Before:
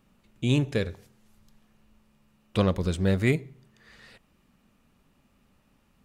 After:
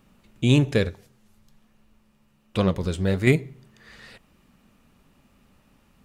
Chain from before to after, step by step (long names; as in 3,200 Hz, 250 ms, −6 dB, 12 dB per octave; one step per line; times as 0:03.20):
0:00.89–0:03.27: flanger 1.2 Hz, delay 3.3 ms, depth 7.2 ms, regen +75%
level +5.5 dB